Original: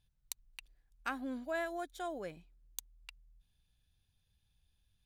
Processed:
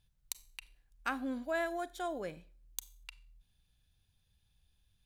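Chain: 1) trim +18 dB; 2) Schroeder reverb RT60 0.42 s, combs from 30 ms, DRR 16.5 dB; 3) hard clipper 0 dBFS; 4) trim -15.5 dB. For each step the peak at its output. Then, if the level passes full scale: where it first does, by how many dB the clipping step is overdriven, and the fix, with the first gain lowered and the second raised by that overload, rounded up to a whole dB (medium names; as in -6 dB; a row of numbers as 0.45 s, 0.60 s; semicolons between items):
-3.5 dBFS, -3.5 dBFS, -3.5 dBFS, -19.0 dBFS; nothing clips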